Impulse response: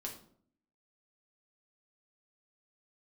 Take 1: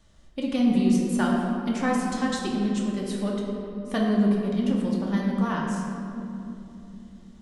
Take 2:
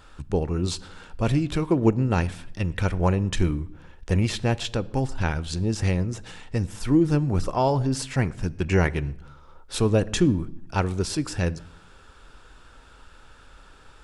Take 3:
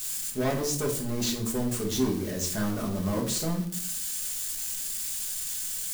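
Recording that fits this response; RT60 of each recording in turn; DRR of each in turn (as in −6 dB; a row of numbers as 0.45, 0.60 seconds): 3; 3.0, 0.80, 0.60 seconds; −3.0, 17.5, −1.5 decibels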